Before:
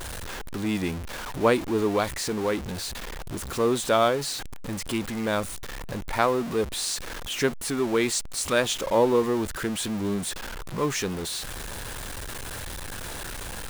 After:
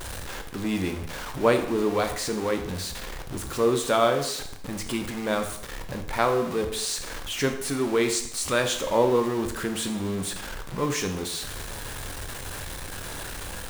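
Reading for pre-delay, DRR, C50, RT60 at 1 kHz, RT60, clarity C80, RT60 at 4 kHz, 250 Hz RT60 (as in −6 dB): 7 ms, 5.5 dB, 9.0 dB, 0.70 s, 0.70 s, 11.5 dB, 0.65 s, 0.70 s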